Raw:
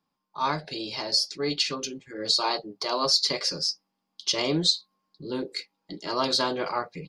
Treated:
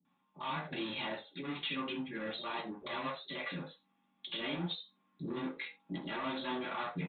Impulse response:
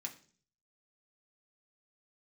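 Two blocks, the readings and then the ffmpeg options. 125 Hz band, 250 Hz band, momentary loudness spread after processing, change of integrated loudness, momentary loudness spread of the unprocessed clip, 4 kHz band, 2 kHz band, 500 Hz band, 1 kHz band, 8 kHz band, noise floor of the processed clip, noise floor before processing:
-6.5 dB, -6.5 dB, 7 LU, -13.5 dB, 13 LU, -17.0 dB, -4.5 dB, -12.0 dB, -10.5 dB, under -40 dB, -77 dBFS, -81 dBFS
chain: -filter_complex "[0:a]acompressor=threshold=-31dB:ratio=6,aresample=8000,asoftclip=type=tanh:threshold=-38.5dB,aresample=44100,acrossover=split=490[a][b];[b]adelay=50[c];[a][c]amix=inputs=2:normalize=0[d];[1:a]atrim=start_sample=2205,afade=t=out:st=0.14:d=0.01,atrim=end_sample=6615[e];[d][e]afir=irnorm=-1:irlink=0,volume=8dB"

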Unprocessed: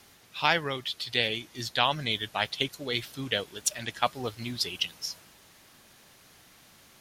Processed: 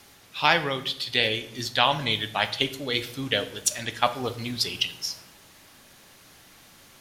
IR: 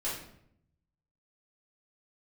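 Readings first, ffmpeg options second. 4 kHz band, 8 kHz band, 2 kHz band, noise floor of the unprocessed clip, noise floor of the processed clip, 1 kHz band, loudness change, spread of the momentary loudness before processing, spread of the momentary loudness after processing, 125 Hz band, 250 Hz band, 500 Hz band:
+4.0 dB, +4.0 dB, +4.0 dB, -57 dBFS, -53 dBFS, +4.0 dB, +4.0 dB, 9 LU, 9 LU, +3.5 dB, +4.0 dB, +4.0 dB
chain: -filter_complex "[0:a]asplit=2[a][b];[1:a]atrim=start_sample=2205,asetrate=40131,aresample=44100[c];[b][c]afir=irnorm=-1:irlink=0,volume=-13dB[d];[a][d]amix=inputs=2:normalize=0,volume=2.5dB"

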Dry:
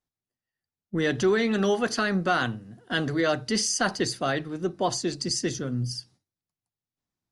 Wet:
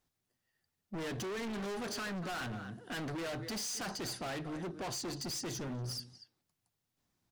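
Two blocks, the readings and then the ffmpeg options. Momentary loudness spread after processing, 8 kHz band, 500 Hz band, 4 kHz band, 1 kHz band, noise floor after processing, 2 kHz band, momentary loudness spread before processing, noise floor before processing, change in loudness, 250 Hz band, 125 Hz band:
5 LU, -10.5 dB, -15.0 dB, -11.0 dB, -13.5 dB, under -85 dBFS, -14.0 dB, 8 LU, under -85 dBFS, -13.0 dB, -13.0 dB, -11.0 dB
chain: -filter_complex "[0:a]asplit=2[a][b];[b]acompressor=threshold=-33dB:ratio=6,volume=1dB[c];[a][c]amix=inputs=2:normalize=0,asplit=2[d][e];[e]adelay=240,highpass=300,lowpass=3.4k,asoftclip=type=hard:threshold=-19.5dB,volume=-16dB[f];[d][f]amix=inputs=2:normalize=0,volume=30.5dB,asoftclip=hard,volume=-30.5dB,alimiter=level_in=14.5dB:limit=-24dB:level=0:latency=1:release=421,volume=-14.5dB,volume=1dB"

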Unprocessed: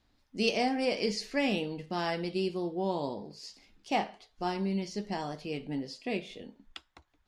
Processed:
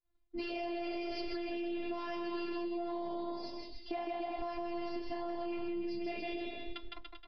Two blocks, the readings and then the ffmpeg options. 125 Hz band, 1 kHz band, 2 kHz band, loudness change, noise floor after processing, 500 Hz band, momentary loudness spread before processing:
-20.5 dB, -6.0 dB, -8.5 dB, -7.0 dB, -55 dBFS, -5.5 dB, 17 LU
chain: -af "agate=range=-33dB:threshold=-56dB:ratio=3:detection=peak,aresample=11025,asoftclip=type=tanh:threshold=-23.5dB,aresample=44100,lowshelf=f=130:g=7.5,aecho=1:1:6.7:0.87,afftfilt=real='hypot(re,im)*cos(PI*b)':imag='0':win_size=512:overlap=0.75,aecho=1:1:160|288|390.4|472.3|537.9:0.631|0.398|0.251|0.158|0.1,alimiter=level_in=4dB:limit=-24dB:level=0:latency=1,volume=-4dB,lowpass=f=3k:p=1,equalizer=f=890:w=1.8:g=3,acompressor=threshold=-39dB:ratio=6,volume=4.5dB"

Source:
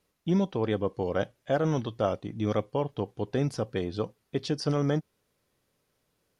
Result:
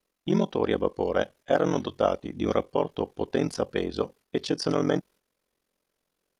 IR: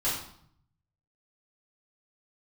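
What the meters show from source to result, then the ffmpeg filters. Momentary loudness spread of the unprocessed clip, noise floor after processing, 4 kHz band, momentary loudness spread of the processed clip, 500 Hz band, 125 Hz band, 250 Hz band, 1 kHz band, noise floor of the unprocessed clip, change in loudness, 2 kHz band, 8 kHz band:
6 LU, -81 dBFS, +4.0 dB, 6 LU, +3.5 dB, -4.0 dB, +1.5 dB, +4.0 dB, -76 dBFS, +2.0 dB, +4.0 dB, +4.0 dB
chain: -af "agate=range=-8dB:threshold=-52dB:ratio=16:detection=peak,aeval=exprs='val(0)*sin(2*PI*22*n/s)':c=same,equalizer=f=110:t=o:w=0.96:g=-14,volume=7dB"

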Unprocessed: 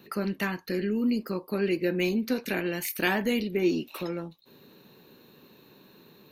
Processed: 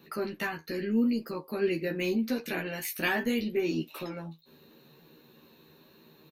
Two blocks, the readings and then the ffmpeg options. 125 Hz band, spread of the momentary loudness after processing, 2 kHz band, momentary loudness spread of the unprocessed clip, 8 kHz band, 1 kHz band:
-4.0 dB, 10 LU, -1.5 dB, 8 LU, -2.5 dB, -2.0 dB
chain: -filter_complex "[0:a]flanger=delay=6:depth=6.5:regen=59:speed=0.79:shape=sinusoidal,asplit=2[a][b];[b]adelay=13,volume=-3dB[c];[a][c]amix=inputs=2:normalize=0"

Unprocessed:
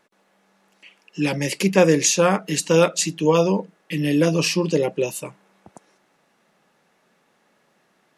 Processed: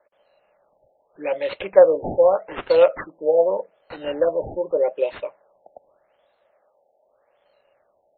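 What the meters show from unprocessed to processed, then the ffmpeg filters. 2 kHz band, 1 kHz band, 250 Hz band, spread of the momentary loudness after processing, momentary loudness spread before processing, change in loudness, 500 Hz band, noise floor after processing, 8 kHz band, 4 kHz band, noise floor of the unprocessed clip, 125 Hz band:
-8.5 dB, -1.5 dB, -14.5 dB, 16 LU, 10 LU, -0.5 dB, +3.0 dB, -66 dBFS, under -40 dB, under -10 dB, -64 dBFS, -19.5 dB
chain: -af "highpass=f=580:t=q:w=5.9,acrusher=samples=9:mix=1:aa=0.000001:lfo=1:lforange=9:lforate=0.55,afftfilt=real='re*lt(b*sr/1024,860*pow(4400/860,0.5+0.5*sin(2*PI*0.83*pts/sr)))':imag='im*lt(b*sr/1024,860*pow(4400/860,0.5+0.5*sin(2*PI*0.83*pts/sr)))':win_size=1024:overlap=0.75,volume=-6dB"

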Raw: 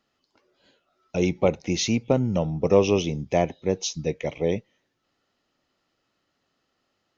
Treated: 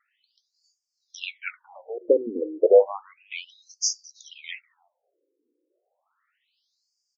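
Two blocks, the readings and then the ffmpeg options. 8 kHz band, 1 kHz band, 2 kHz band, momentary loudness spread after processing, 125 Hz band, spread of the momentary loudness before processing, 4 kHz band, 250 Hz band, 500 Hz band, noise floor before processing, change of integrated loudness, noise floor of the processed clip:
n/a, -6.0 dB, -1.5 dB, 21 LU, under -35 dB, 8 LU, -2.5 dB, -11.5 dB, +1.0 dB, -75 dBFS, +1.5 dB, -80 dBFS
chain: -filter_complex "[0:a]asplit=2[a][b];[b]adelay=320,highpass=300,lowpass=3.4k,asoftclip=type=hard:threshold=-13dB,volume=-25dB[c];[a][c]amix=inputs=2:normalize=0,acontrast=69,afftfilt=real='re*between(b*sr/1024,360*pow(6500/360,0.5+0.5*sin(2*PI*0.32*pts/sr))/1.41,360*pow(6500/360,0.5+0.5*sin(2*PI*0.32*pts/sr))*1.41)':imag='im*between(b*sr/1024,360*pow(6500/360,0.5+0.5*sin(2*PI*0.32*pts/sr))/1.41,360*pow(6500/360,0.5+0.5*sin(2*PI*0.32*pts/sr))*1.41)':win_size=1024:overlap=0.75"

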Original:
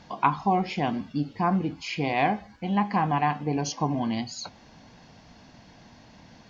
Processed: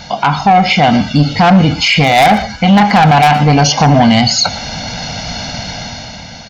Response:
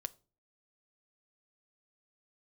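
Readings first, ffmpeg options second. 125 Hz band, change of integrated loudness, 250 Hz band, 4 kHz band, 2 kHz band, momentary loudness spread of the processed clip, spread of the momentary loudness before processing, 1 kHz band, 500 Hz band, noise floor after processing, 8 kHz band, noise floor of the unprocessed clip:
+19.5 dB, +18.0 dB, +17.0 dB, +25.0 dB, +20.0 dB, 14 LU, 7 LU, +16.5 dB, +17.0 dB, -31 dBFS, n/a, -53 dBFS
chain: -filter_complex "[0:a]acrossover=split=3400[a][b];[b]acompressor=threshold=-50dB:ratio=4:attack=1:release=60[c];[a][c]amix=inputs=2:normalize=0,lowpass=5.8k,aecho=1:1:1.4:0.67,dynaudnorm=f=140:g=11:m=10dB,aresample=16000,asoftclip=type=tanh:threshold=-13.5dB,aresample=44100,crystalizer=i=4:c=0,aeval=exprs='0.299*(abs(mod(val(0)/0.299+3,4)-2)-1)':c=same,aecho=1:1:116:0.0944,alimiter=level_in=16.5dB:limit=-1dB:release=50:level=0:latency=1,volume=-1dB"

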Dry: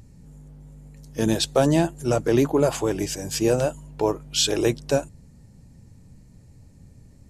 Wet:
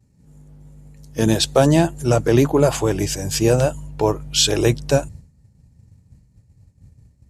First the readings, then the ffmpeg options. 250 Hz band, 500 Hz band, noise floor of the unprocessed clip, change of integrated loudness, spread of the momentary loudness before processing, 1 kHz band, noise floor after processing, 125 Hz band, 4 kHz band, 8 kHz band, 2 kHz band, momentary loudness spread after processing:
+4.0 dB, +4.0 dB, -50 dBFS, +4.5 dB, 7 LU, +4.5 dB, -57 dBFS, +7.5 dB, +5.0 dB, +5.0 dB, +5.0 dB, 7 LU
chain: -af "agate=range=-33dB:threshold=-39dB:ratio=3:detection=peak,asubboost=boost=3:cutoff=140,highpass=58,volume=5dB"

